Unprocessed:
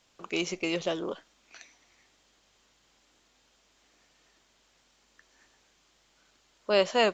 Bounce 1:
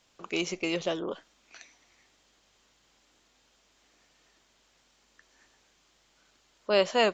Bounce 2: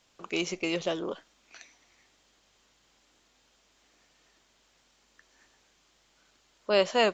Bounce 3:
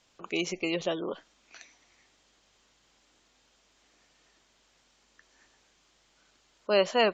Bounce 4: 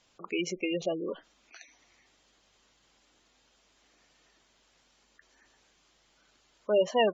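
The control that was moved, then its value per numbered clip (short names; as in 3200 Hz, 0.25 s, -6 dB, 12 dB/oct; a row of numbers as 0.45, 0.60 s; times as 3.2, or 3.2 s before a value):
spectral gate, under each frame's peak: -45, -55, -30, -15 dB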